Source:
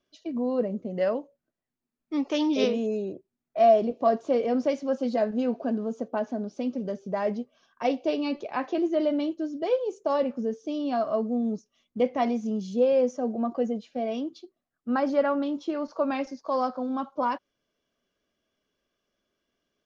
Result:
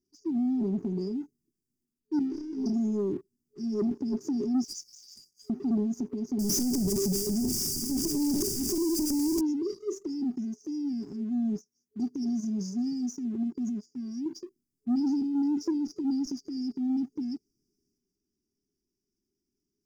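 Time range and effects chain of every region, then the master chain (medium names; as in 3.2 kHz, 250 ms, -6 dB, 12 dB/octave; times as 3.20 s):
2.19–2.66 s: CVSD coder 32 kbps + low-pass 3.1 kHz + feedback comb 66 Hz, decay 0.49 s, mix 100%
4.64–5.50 s: steep high-pass 1.9 kHz 96 dB/octave + peaking EQ 4.1 kHz -4 dB 2.9 oct + waveshaping leveller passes 2
6.39–9.41 s: one-bit comparator + doubling 27 ms -13 dB
10.36–14.26 s: high-pass 59 Hz + treble shelf 4.6 kHz +9 dB + upward expansion, over -39 dBFS
whole clip: FFT band-reject 420–4600 Hz; waveshaping leveller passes 1; transient shaper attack -1 dB, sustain +7 dB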